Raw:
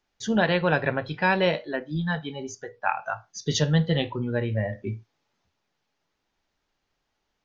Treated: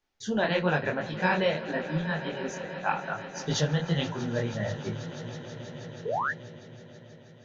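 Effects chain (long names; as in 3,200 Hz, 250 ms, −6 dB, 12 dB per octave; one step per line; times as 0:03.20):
echo that builds up and dies away 161 ms, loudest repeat 5, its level −18 dB
sound drawn into the spectrogram rise, 0:06.05–0:06.31, 410–1,900 Hz −25 dBFS
micro pitch shift up and down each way 59 cents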